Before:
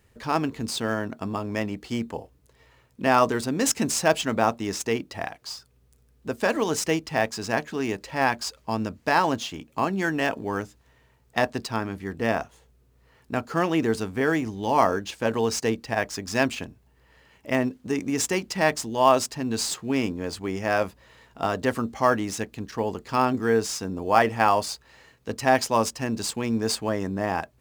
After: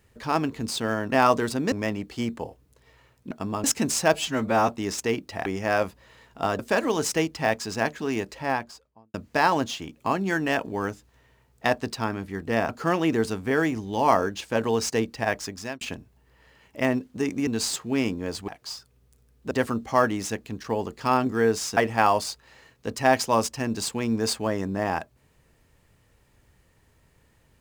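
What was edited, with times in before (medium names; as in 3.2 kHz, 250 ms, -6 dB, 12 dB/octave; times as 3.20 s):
1.12–1.45 s: swap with 3.04–3.64 s
4.14–4.50 s: stretch 1.5×
5.28–6.31 s: swap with 20.46–21.59 s
7.92–8.86 s: studio fade out
12.41–13.39 s: delete
16.11–16.51 s: fade out
18.17–19.45 s: delete
23.85–24.19 s: delete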